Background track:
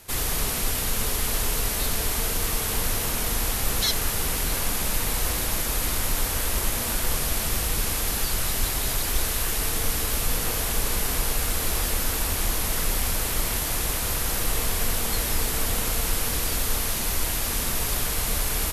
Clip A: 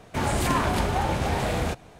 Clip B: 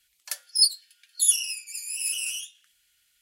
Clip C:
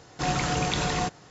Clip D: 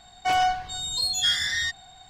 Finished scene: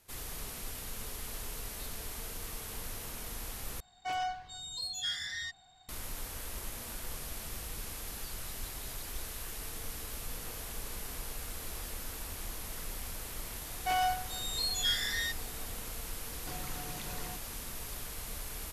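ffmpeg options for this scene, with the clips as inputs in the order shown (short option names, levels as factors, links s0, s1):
-filter_complex "[4:a]asplit=2[s0][s1];[0:a]volume=0.158[s2];[3:a]acompressor=threshold=0.0158:ratio=6:attack=3.2:release=140:knee=1:detection=peak[s3];[s2]asplit=2[s4][s5];[s4]atrim=end=3.804[s6];[s0]atrim=end=2.09,asetpts=PTS-STARTPTS,volume=0.237[s7];[s5]atrim=start=5.886[s8];[s1]atrim=end=2.09,asetpts=PTS-STARTPTS,volume=0.398,afade=t=in:d=0.004:c=hsin,afade=t=out:st=2.086:d=0.004:c=hsin,adelay=13610[s9];[s3]atrim=end=1.3,asetpts=PTS-STARTPTS,volume=0.501,afade=t=in:d=0.004:c=hsin,afade=t=out:st=1.296:d=0.004:c=hsin,adelay=16280[s10];[s6][s7]acrossfade=d=0.004:c1=hsin:c2=hsin[s11];[s11][s8]acrossfade=d=0.004:c1=hsin:c2=hsin[s12];[s12][s9][s10]amix=inputs=3:normalize=0"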